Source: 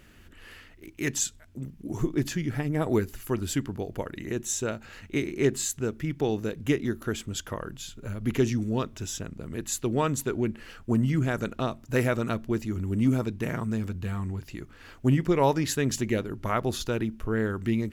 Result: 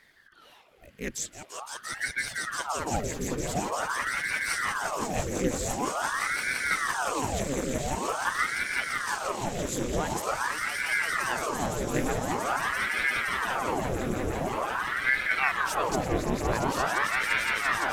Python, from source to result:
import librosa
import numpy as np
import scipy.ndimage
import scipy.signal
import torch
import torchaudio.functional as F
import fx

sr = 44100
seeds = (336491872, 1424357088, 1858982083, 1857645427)

p1 = fx.dereverb_blind(x, sr, rt60_s=1.5)
p2 = fx.over_compress(p1, sr, threshold_db=-38.0, ratio=-1.0, at=(6.27, 6.71))
p3 = p2 + fx.echo_swell(p2, sr, ms=171, loudest=8, wet_db=-6.0, dry=0)
p4 = fx.ring_lfo(p3, sr, carrier_hz=1000.0, swing_pct=90, hz=0.46)
y = p4 * 10.0 ** (-2.5 / 20.0)